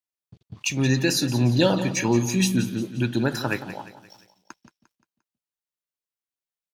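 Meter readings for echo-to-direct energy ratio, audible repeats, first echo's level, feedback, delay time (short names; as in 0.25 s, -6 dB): -12.0 dB, 4, -13.0 dB, 45%, 0.175 s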